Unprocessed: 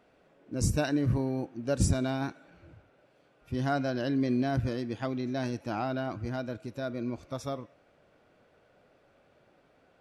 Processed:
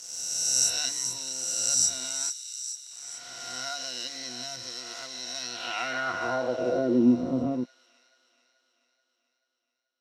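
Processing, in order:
peak hold with a rise ahead of every peak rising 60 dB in 1.75 s
EQ curve with evenly spaced ripples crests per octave 2, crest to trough 13 dB
in parallel at −1 dB: downward compressor, threshold −30 dBFS, peak gain reduction 15.5 dB
on the sum: dead-zone distortion −37 dBFS
band-pass filter sweep 6,000 Hz → 260 Hz, 0:05.33–0:07.05
on a send: delay with a high-pass on its return 433 ms, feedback 57%, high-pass 3,700 Hz, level −7 dB
on the sum: level +8.5 dB

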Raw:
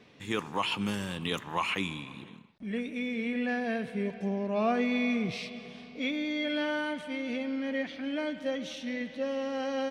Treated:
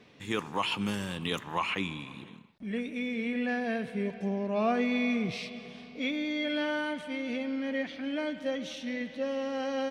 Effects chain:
0:01.58–0:02.00: high-shelf EQ 7,500 Hz −10.5 dB

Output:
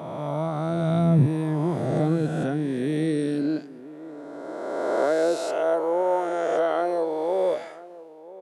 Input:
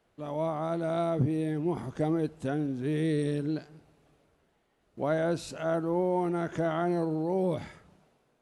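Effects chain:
peak hold with a rise ahead of every peak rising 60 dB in 2.27 s
slap from a distant wall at 170 metres, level −18 dB
high-pass filter sweep 140 Hz → 500 Hz, 0:01.89–0:05.76

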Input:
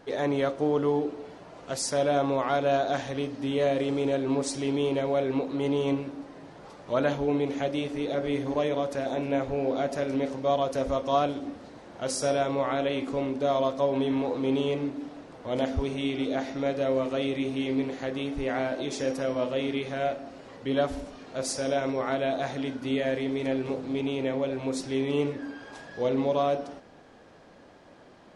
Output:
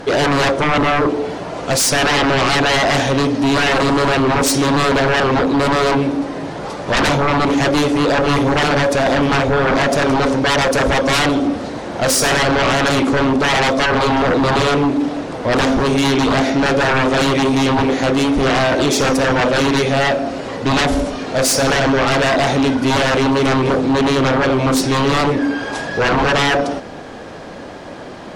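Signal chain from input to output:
sine wavefolder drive 17 dB, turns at −11.5 dBFS

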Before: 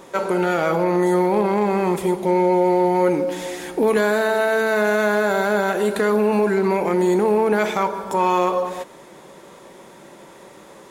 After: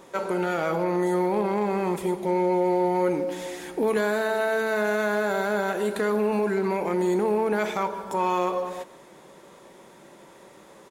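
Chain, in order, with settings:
far-end echo of a speakerphone 150 ms, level −18 dB
level −6 dB

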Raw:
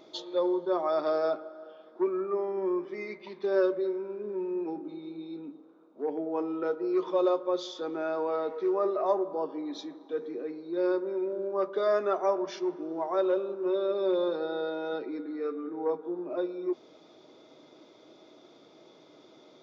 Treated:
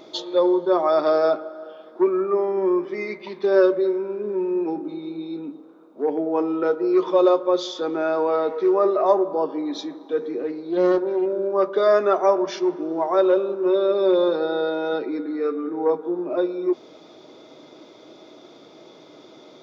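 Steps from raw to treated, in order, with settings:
0:10.40–0:11.26: highs frequency-modulated by the lows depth 0.13 ms
level +9 dB

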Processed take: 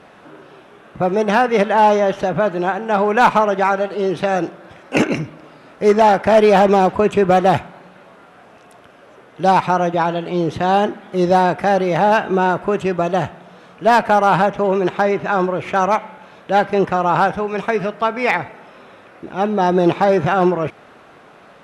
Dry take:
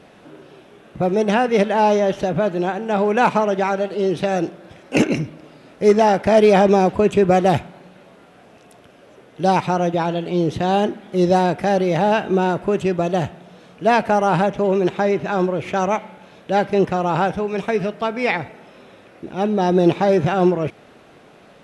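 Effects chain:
parametric band 1,200 Hz +8.5 dB 1.6 octaves
asymmetric clip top −4.5 dBFS
level −1 dB

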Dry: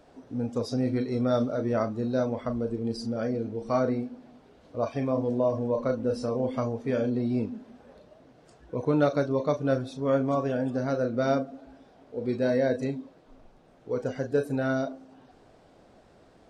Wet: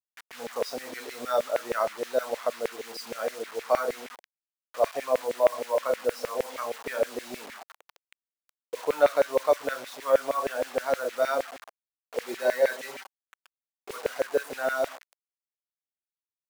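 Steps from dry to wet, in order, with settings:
bit reduction 7 bits
0:12.28–0:13.96: comb filter 5.2 ms, depth 57%
auto-filter high-pass saw down 6.4 Hz 490–2,200 Hz

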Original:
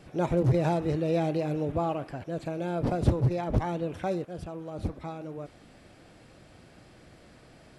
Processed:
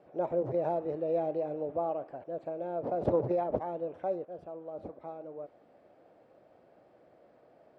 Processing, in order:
0:02.92–0:03.57: transient designer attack +7 dB, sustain +11 dB
resonant band-pass 590 Hz, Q 1.9

